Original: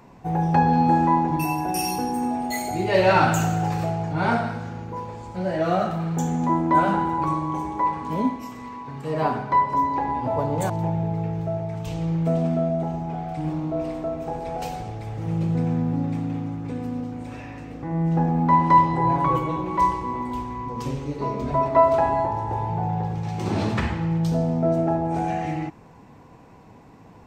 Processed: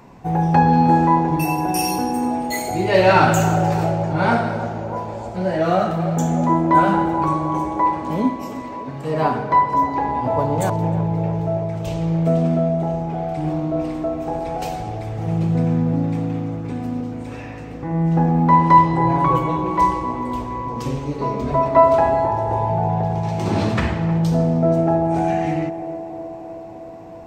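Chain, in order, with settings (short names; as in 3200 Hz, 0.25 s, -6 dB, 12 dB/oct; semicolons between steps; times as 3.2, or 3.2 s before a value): narrowing echo 0.31 s, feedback 81%, band-pass 520 Hz, level -10 dB; gain +4 dB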